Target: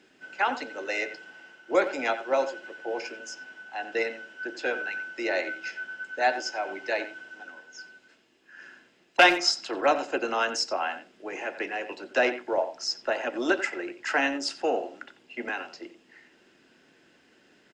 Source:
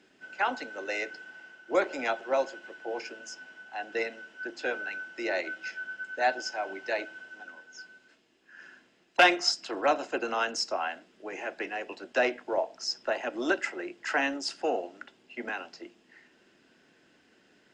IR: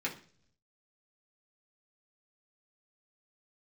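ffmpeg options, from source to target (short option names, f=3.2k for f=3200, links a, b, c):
-filter_complex "[0:a]asplit=2[a][b];[b]adelay=90,highpass=300,lowpass=3.4k,asoftclip=type=hard:threshold=-16.5dB,volume=-12dB[c];[a][c]amix=inputs=2:normalize=0,asplit=2[d][e];[1:a]atrim=start_sample=2205,asetrate=48510,aresample=44100[f];[e][f]afir=irnorm=-1:irlink=0,volume=-18.5dB[g];[d][g]amix=inputs=2:normalize=0,volume=2dB"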